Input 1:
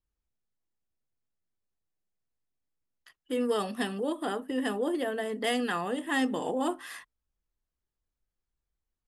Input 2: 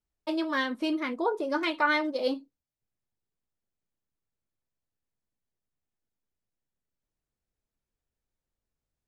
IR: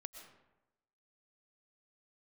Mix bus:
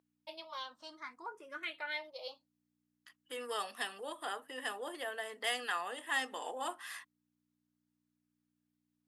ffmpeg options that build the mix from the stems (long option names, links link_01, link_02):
-filter_complex "[0:a]aeval=exprs='val(0)+0.00355*(sin(2*PI*60*n/s)+sin(2*PI*2*60*n/s)/2+sin(2*PI*3*60*n/s)/3+sin(2*PI*4*60*n/s)/4+sin(2*PI*5*60*n/s)/5)':channel_layout=same,volume=-2.5dB,asplit=2[link_01][link_02];[1:a]acontrast=32,asplit=2[link_03][link_04];[link_04]afreqshift=0.58[link_05];[link_03][link_05]amix=inputs=2:normalize=1,volume=-7dB[link_06];[link_02]apad=whole_len=400252[link_07];[link_06][link_07]sidechaincompress=threshold=-57dB:ratio=3:attack=16:release=788[link_08];[link_01][link_08]amix=inputs=2:normalize=0,highpass=860"